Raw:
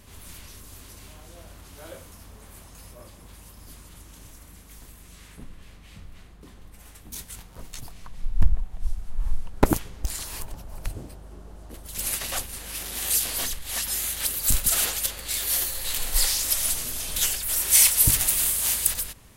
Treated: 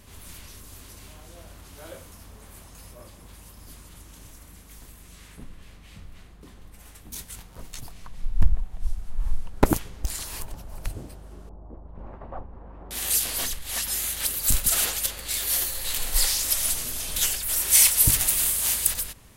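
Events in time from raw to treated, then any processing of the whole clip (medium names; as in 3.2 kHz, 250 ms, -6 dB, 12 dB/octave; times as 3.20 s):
11.49–12.91 s: Chebyshev low-pass 980 Hz, order 3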